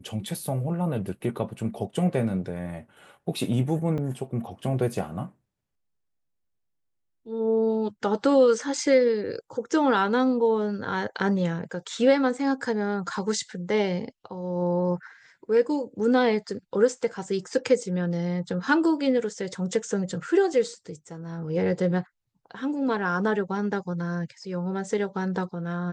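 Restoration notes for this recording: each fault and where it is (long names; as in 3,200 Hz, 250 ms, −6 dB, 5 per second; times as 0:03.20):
0:03.98–0:03.99: drop-out 5.3 ms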